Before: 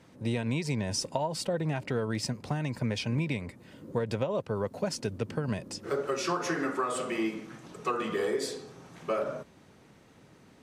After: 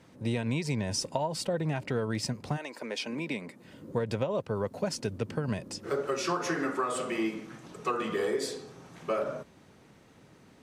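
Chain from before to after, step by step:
0:02.56–0:03.63: high-pass filter 400 Hz → 150 Hz 24 dB per octave

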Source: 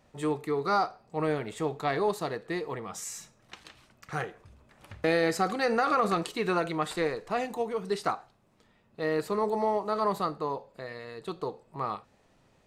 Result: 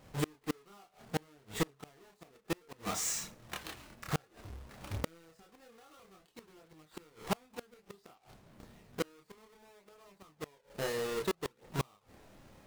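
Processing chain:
each half-wave held at its own peak
downward compressor 2.5 to 1, threshold −26 dBFS, peak gain reduction 6.5 dB
multi-voice chorus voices 2, 0.3 Hz, delay 28 ms, depth 2.6 ms
gate with flip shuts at −27 dBFS, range −34 dB
level +4.5 dB

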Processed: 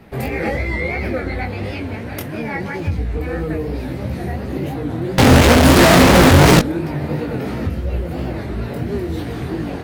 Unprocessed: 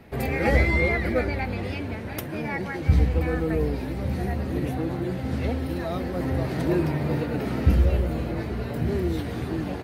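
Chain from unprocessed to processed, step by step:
downward compressor 4 to 1, threshold −23 dBFS, peak gain reduction 9 dB
0:05.18–0:06.61: fuzz pedal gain 57 dB, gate −58 dBFS
chorus effect 2.9 Hz, delay 17 ms, depth 6.4 ms
wow of a warped record 33 1/3 rpm, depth 160 cents
level +8 dB

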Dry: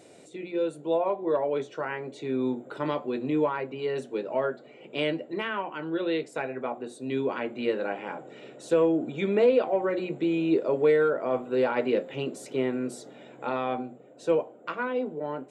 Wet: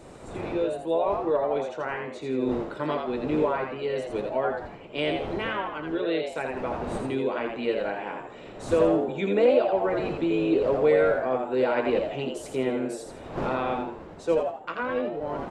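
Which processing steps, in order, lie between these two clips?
wind on the microphone 570 Hz −42 dBFS
echo with shifted repeats 83 ms, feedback 34%, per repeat +100 Hz, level −5 dB

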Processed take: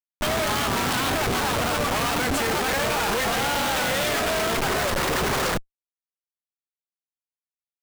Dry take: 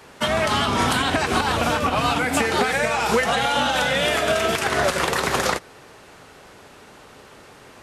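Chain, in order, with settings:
pitch vibrato 3.8 Hz 26 cents
harmonic generator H 4 −11 dB, 7 −22 dB, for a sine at −6.5 dBFS
comparator with hysteresis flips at −30.5 dBFS

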